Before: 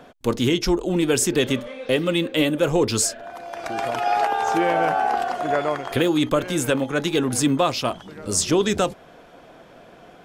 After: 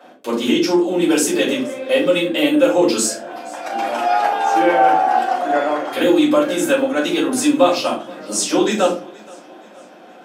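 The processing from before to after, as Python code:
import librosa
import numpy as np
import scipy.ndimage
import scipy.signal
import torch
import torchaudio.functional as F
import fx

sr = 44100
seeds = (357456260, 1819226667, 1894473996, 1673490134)

p1 = scipy.signal.sosfilt(scipy.signal.butter(4, 250.0, 'highpass', fs=sr, output='sos'), x)
p2 = p1 + fx.echo_feedback(p1, sr, ms=473, feedback_pct=47, wet_db=-23.0, dry=0)
p3 = fx.room_shoebox(p2, sr, seeds[0], volume_m3=190.0, walls='furnished', distance_m=5.2)
y = p3 * 10.0 ** (-6.0 / 20.0)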